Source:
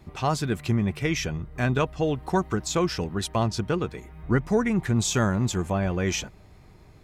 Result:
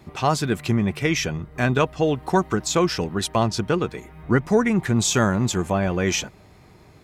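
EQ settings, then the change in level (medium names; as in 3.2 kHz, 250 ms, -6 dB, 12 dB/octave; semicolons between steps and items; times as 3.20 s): high-pass 130 Hz 6 dB/octave; +5.0 dB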